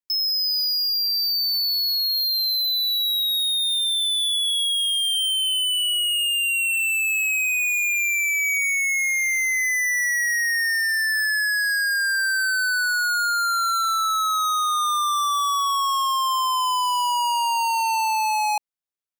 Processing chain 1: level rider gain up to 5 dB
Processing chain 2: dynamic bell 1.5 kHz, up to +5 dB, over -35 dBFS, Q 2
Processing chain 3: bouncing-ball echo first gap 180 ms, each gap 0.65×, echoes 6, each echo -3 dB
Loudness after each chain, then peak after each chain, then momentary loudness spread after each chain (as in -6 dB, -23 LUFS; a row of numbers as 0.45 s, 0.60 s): -15.0 LUFS, -18.5 LUFS, -17.0 LUFS; -16.5 dBFS, -15.5 dBFS, -12.0 dBFS; 2 LU, 4 LU, 2 LU